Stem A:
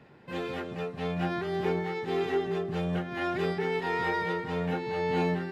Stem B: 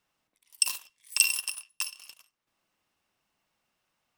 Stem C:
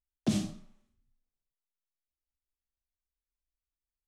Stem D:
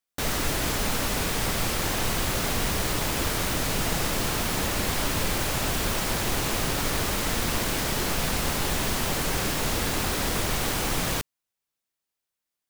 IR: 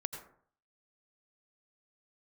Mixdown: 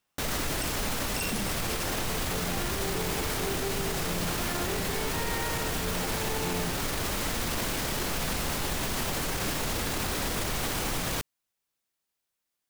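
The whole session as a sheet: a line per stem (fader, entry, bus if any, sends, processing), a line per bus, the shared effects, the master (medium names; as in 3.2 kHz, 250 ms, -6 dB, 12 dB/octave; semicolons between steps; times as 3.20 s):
+1.0 dB, 1.30 s, no send, none
-2.5 dB, 0.00 s, no send, none
+1.5 dB, 1.05 s, no send, none
+2.0 dB, 0.00 s, no send, none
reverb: none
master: peak limiter -21 dBFS, peak gain reduction 13.5 dB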